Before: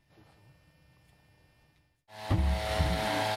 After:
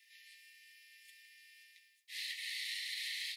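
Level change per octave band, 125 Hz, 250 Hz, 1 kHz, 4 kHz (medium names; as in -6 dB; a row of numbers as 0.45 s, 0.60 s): under -40 dB, under -40 dB, under -40 dB, -1.0 dB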